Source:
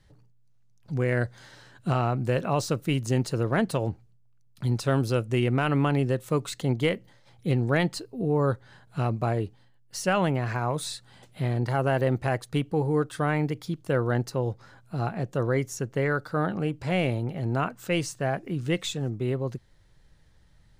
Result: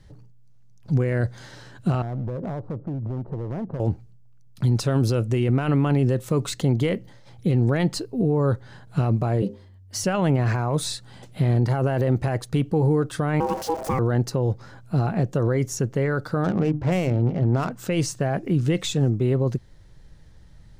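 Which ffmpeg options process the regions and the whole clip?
-filter_complex "[0:a]asettb=1/sr,asplit=3[a][b][c];[a]atrim=end=2.024[d];[b]atrim=start=2.02:end=3.8,asetpts=PTS-STARTPTS,afade=t=in:d=0.004:c=qsin,afade=t=out:st=1.776:d=0.004:c=qsin,lowpass=f=1k:w=0.5412,lowpass=f=1k:w=1.3066,acompressor=threshold=-33dB:ratio=8:attack=3.2:release=140:knee=1:detection=peak,asoftclip=type=hard:threshold=-34.5dB[e];[c]atrim=start=3.796[f];[d][e]acrossfade=d=0.004:c1=hsin:c2=qsin[g];[g][f]acrossfade=d=0.004:c1=qsin:c2=hsin,asettb=1/sr,asplit=3[h][i][j];[h]atrim=end=9.424[k];[i]atrim=start=9.42:end=10.04,asetpts=PTS-STARTPTS,afade=t=in:d=0.004:c=qsin,afade=t=out:st=0.616:d=0.004:c=qsin,bandreject=f=60:t=h:w=6,bandreject=f=120:t=h:w=6,bandreject=f=180:t=h:w=6,bandreject=f=240:t=h:w=6,bandreject=f=300:t=h:w=6,bandreject=f=360:t=h:w=6,bandreject=f=420:t=h:w=6,bandreject=f=480:t=h:w=6,bandreject=f=540:t=h:w=6,afreqshift=94[l];[j]atrim=start=10.036[m];[k][l]acrossfade=d=0.004:c1=hsin:c2=qsin[n];[n][m]acrossfade=d=0.004:c1=qsin:c2=hsin,asettb=1/sr,asplit=3[o][p][q];[o]atrim=end=13.404[r];[p]atrim=start=13.4:end=13.99,asetpts=PTS-STARTPTS,afade=t=in:d=0.004:c=qsin,afade=t=out:st=0.586:d=0.004:c=qsin,aeval=exprs='val(0)+0.5*0.0251*sgn(val(0))':c=same,equalizer=f=3.1k:t=o:w=0.32:g=-14.5,aeval=exprs='val(0)*sin(2*PI*650*n/s)':c=same[s];[q]atrim=start=13.986[t];[r][s]acrossfade=d=0.004:c1=hsin:c2=qsin[u];[u][t]acrossfade=d=0.004:c1=qsin:c2=hsin,asettb=1/sr,asplit=3[v][w][x];[v]atrim=end=16.444[y];[w]atrim=start=16.44:end=17.71,asetpts=PTS-STARTPTS,afade=t=in:d=0.004:c=qsin,afade=t=out:st=1.266:d=0.004:c=qsin,bandreject=f=50:t=h:w=6,bandreject=f=100:t=h:w=6,bandreject=f=150:t=h:w=6,bandreject=f=200:t=h:w=6,bandreject=f=250:t=h:w=6,bandreject=f=300:t=h:w=6,adynamicsmooth=sensitivity=6.5:basefreq=800[z];[x]atrim=start=17.706[aa];[y][z]acrossfade=d=0.004:c1=hsin:c2=qsin[ab];[ab][aa]acrossfade=d=0.004:c1=qsin:c2=hsin,equalizer=f=5.8k:w=1.5:g=3,alimiter=limit=-22dB:level=0:latency=1:release=27,tiltshelf=f=650:g=3.5,volume=7dB"

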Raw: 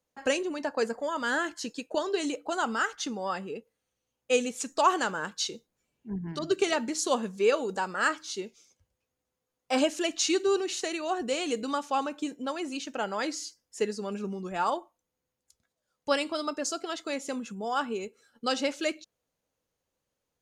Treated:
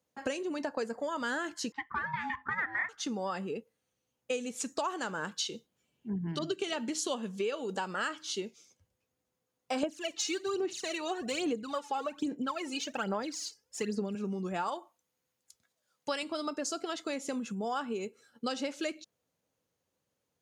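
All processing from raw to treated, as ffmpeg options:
-filter_complex "[0:a]asettb=1/sr,asplit=3[a][b][c];[a]atrim=end=1.724[d];[b]atrim=start=1.72:end=2.89,asetpts=PTS-STARTPTS,afade=t=in:d=0.004:c=qsin,afade=t=out:st=1.166:d=0.004:c=qsin,aeval=exprs='val(0)*sin(2*PI*550*n/s)':c=same,lowpass=f=1.8k:t=q:w=7.4,lowshelf=f=480:g=-11[e];[c]atrim=start=2.886[f];[d][e]acrossfade=d=0.004:c1=hsin:c2=qsin[g];[g][f]acrossfade=d=0.004:c1=qsin:c2=hsin,asettb=1/sr,asplit=3[h][i][j];[h]atrim=end=5.344[k];[i]atrim=start=5.34:end=8.42,asetpts=PTS-STARTPTS,afade=t=in:d=0.004:c=qsin,afade=t=out:st=3.076:d=0.004:c=qsin,highpass=42,equalizer=f=3.1k:t=o:w=0.35:g=8[l];[j]atrim=start=8.416[m];[k][l]acrossfade=d=0.004:c1=hsin:c2=qsin[n];[n][m]acrossfade=d=0.004:c1=qsin:c2=hsin,asettb=1/sr,asplit=3[o][p][q];[o]atrim=end=9.834[r];[p]atrim=start=9.83:end=14.15,asetpts=PTS-STARTPTS,afade=t=in:d=0.004:c=qsin,afade=t=out:st=4.316:d=0.004:c=qsin,highshelf=f=8.2k:g=-4.5,aphaser=in_gain=1:out_gain=1:delay=2.4:decay=0.74:speed=1.2:type=sinusoidal[s];[q]atrim=start=14.146[t];[r][s]acrossfade=d=0.004:c1=hsin:c2=qsin[u];[u][t]acrossfade=d=0.004:c1=qsin:c2=hsin,asettb=1/sr,asplit=3[v][w][x];[v]atrim=end=14.684[y];[w]atrim=start=14.68:end=16.23,asetpts=PTS-STARTPTS,afade=t=in:d=0.004:c=qsin,afade=t=out:st=1.546:d=0.004:c=qsin,highpass=46,tiltshelf=f=700:g=-4.5[z];[x]atrim=start=16.226[aa];[y][z]acrossfade=d=0.004:c1=hsin:c2=qsin[ab];[ab][aa]acrossfade=d=0.004:c1=qsin:c2=hsin,highpass=110,lowshelf=f=190:g=7,acompressor=threshold=-31dB:ratio=6"

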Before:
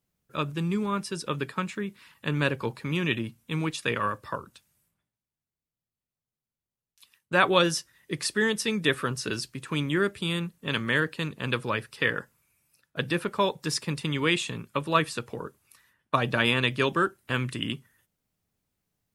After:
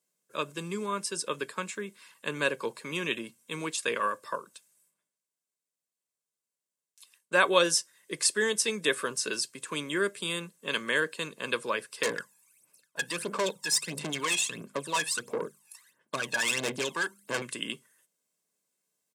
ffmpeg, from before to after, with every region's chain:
-filter_complex "[0:a]asettb=1/sr,asplit=3[a][b][c];[a]atrim=end=12.034[d];[b]atrim=start=12.03:end=17.42,asetpts=PTS-STARTPTS,afade=t=in:d=0.004:c=qsin,afade=t=out:st=5.386:d=0.004:c=qsin,bandreject=f=50:t=h:w=6,bandreject=f=100:t=h:w=6,bandreject=f=150:t=h:w=6,bandreject=f=200:t=h:w=6,bandreject=f=250:t=h:w=6,aphaser=in_gain=1:out_gain=1:delay=1.2:decay=0.78:speed=1.5:type=sinusoidal,aeval=exprs='(tanh(14.1*val(0)+0.4)-tanh(0.4))/14.1':c=same[e];[c]atrim=start=17.416[f];[d][e]acrossfade=d=0.004:c1=hsin:c2=qsin[g];[g][f]acrossfade=d=0.004:c1=qsin:c2=hsin,highpass=f=210:w=0.5412,highpass=f=210:w=1.3066,equalizer=f=8k:t=o:w=0.97:g=11,aecho=1:1:1.9:0.43,volume=-3dB"

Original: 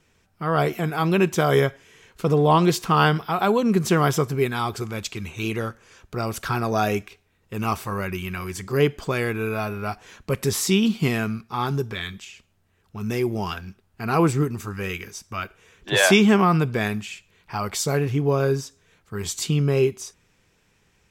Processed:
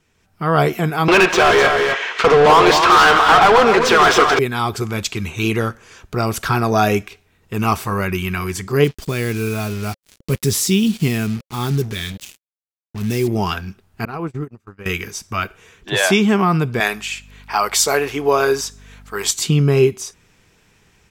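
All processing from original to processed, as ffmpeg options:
-filter_complex "[0:a]asettb=1/sr,asplit=3[a][b][c];[a]atrim=end=1.084[d];[b]atrim=start=1.08:end=4.39,asetpts=PTS-STARTPTS,afade=t=in:d=0.004:c=qsin,afade=t=out:st=3.306:d=0.004:c=qsin,highpass=600,lowpass=4.8k,asplit=2[e][f];[f]highpass=f=720:p=1,volume=34dB,asoftclip=type=tanh:threshold=-5dB[g];[e][g]amix=inputs=2:normalize=0,lowpass=f=1.9k:p=1,volume=-6dB,aecho=1:1:166|255:0.224|0.473,atrim=end_sample=145971[h];[c]atrim=start=4.386[i];[d][h]acrossfade=d=0.004:c1=hsin:c2=qsin[j];[j][i]acrossfade=d=0.004:c1=qsin:c2=hsin,asettb=1/sr,asplit=3[k][l][m];[k]atrim=end=8.844[n];[l]atrim=start=8.84:end=13.28,asetpts=PTS-STARTPTS,afade=t=in:d=0.004:c=qsin,afade=t=out:st=4.436:d=0.004:c=qsin,acrusher=bits=5:mix=0:aa=0.5,equalizer=f=1k:w=0.55:g=-10[o];[m]atrim=start=13.276[p];[n][o]acrossfade=d=0.004:c1=hsin:c2=qsin[q];[q][p]acrossfade=d=0.004:c1=qsin:c2=hsin,asettb=1/sr,asplit=3[r][s][t];[r]atrim=end=14.054[u];[s]atrim=start=14.05:end=14.86,asetpts=PTS-STARTPTS,afade=t=in:d=0.004:c=qsin,afade=t=out:st=0.806:d=0.004:c=qsin,highshelf=f=4.6k:g=-11,acompressor=threshold=-27dB:ratio=6:attack=3.2:release=140:knee=1:detection=peak,agate=range=-37dB:threshold=-30dB:ratio=16:release=100:detection=peak[v];[t]atrim=start=14.856[w];[u][v]acrossfade=d=0.004:c1=hsin:c2=qsin[x];[x][w]acrossfade=d=0.004:c1=qsin:c2=hsin,asettb=1/sr,asplit=3[y][z][aa];[y]atrim=end=16.804[ab];[z]atrim=start=16.8:end=19.31,asetpts=PTS-STARTPTS,afade=t=in:d=0.004:c=qsin,afade=t=out:st=2.506:d=0.004:c=qsin,highpass=520,aeval=exprs='val(0)+0.00178*(sin(2*PI*50*n/s)+sin(2*PI*2*50*n/s)/2+sin(2*PI*3*50*n/s)/3+sin(2*PI*4*50*n/s)/4+sin(2*PI*5*50*n/s)/5)':c=same,acontrast=44[ac];[aa]atrim=start=19.306[ad];[ab][ac]acrossfade=d=0.004:c1=hsin:c2=qsin[ae];[ae][ad]acrossfade=d=0.004:c1=qsin:c2=hsin,bandreject=f=540:w=14,dynaudnorm=f=170:g=3:m=9dB,volume=-1dB"

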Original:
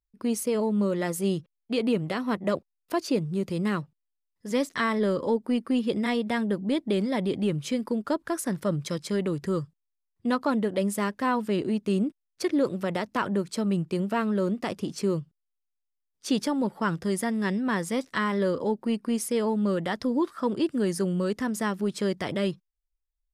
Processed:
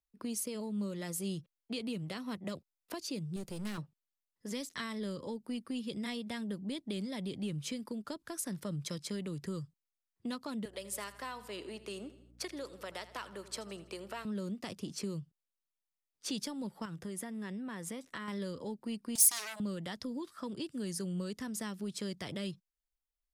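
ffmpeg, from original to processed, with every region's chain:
-filter_complex "[0:a]asettb=1/sr,asplit=3[a][b][c];[a]atrim=end=3.364[d];[b]atrim=start=3.36:end=3.78,asetpts=PTS-STARTPTS,afade=t=in:d=0.004:c=qsin,afade=t=out:st=0.416:d=0.004:c=qsin,aeval=exprs='if(lt(val(0),0),0.251*val(0),val(0))':c=same,highshelf=f=6.6k:g=8.5[e];[c]atrim=start=3.776[f];[d][e]acrossfade=d=0.004:c1=hsin:c2=qsin[g];[g][f]acrossfade=d=0.004:c1=qsin:c2=hsin,asettb=1/sr,asplit=3[h][i][j];[h]atrim=end=10.654[k];[i]atrim=start=10.65:end=14.25,asetpts=PTS-STARTPTS,afade=t=in:d=0.004:c=qsin,afade=t=out:st=3.596:d=0.004:c=qsin,highpass=540,aeval=exprs='val(0)+0.00224*(sin(2*PI*60*n/s)+sin(2*PI*2*60*n/s)/2+sin(2*PI*3*60*n/s)/3+sin(2*PI*4*60*n/s)/4+sin(2*PI*5*60*n/s)/5)':c=same,aecho=1:1:81|162|243|324:0.141|0.0692|0.0339|0.0166,atrim=end_sample=158760[l];[j]atrim=start=14.246[m];[k][l]acrossfade=d=0.004:c1=hsin:c2=qsin[n];[n][m]acrossfade=d=0.004:c1=qsin:c2=hsin,asettb=1/sr,asplit=3[o][p][q];[o]atrim=end=16.854[r];[p]atrim=start=16.85:end=18.28,asetpts=PTS-STARTPTS,afade=t=in:d=0.004:c=qsin,afade=t=out:st=1.426:d=0.004:c=qsin,equalizer=f=4.8k:t=o:w=0.56:g=-6.5,acompressor=threshold=-32dB:ratio=2.5:attack=3.2:release=140:knee=1:detection=peak[s];[q]atrim=start=18.276[t];[r][s]acrossfade=d=0.004:c1=hsin:c2=qsin[u];[u][t]acrossfade=d=0.004:c1=qsin:c2=hsin,asettb=1/sr,asplit=3[v][w][x];[v]atrim=end=19.154[y];[w]atrim=start=19.15:end=19.6,asetpts=PTS-STARTPTS,afade=t=in:d=0.004:c=qsin,afade=t=out:st=0.446:d=0.004:c=qsin,aeval=exprs='0.141*sin(PI/2*3.55*val(0)/0.141)':c=same,aderivative[z];[x]atrim=start=19.596[aa];[y][z]acrossfade=d=0.004:c1=hsin:c2=qsin[ab];[ab][aa]acrossfade=d=0.004:c1=qsin:c2=hsin,lowshelf=f=92:g=-7,acrossover=split=170|3000[ac][ad][ae];[ad]acompressor=threshold=-38dB:ratio=6[af];[ac][af][ae]amix=inputs=3:normalize=0,volume=-3.5dB"

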